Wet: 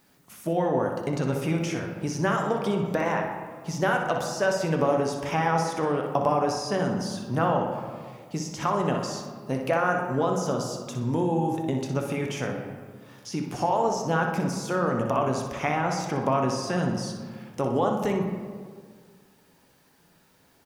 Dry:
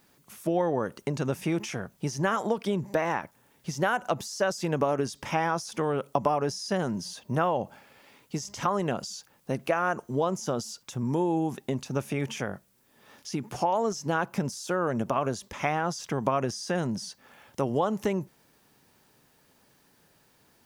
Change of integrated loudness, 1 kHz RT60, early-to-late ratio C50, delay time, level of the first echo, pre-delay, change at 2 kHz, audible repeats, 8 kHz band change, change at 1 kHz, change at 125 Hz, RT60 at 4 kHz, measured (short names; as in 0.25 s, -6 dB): +2.5 dB, 1.7 s, 3.5 dB, 61 ms, -8.0 dB, 7 ms, +2.5 dB, 1, +0.5 dB, +3.0 dB, +3.5 dB, 0.95 s